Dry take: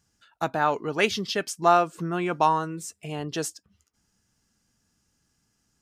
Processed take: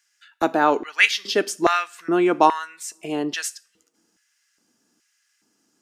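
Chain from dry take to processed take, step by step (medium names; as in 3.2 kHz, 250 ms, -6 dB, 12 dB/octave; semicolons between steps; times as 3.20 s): two-slope reverb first 0.41 s, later 1.7 s, from -28 dB, DRR 15.5 dB; LFO high-pass square 1.2 Hz 300–1900 Hz; trim +4 dB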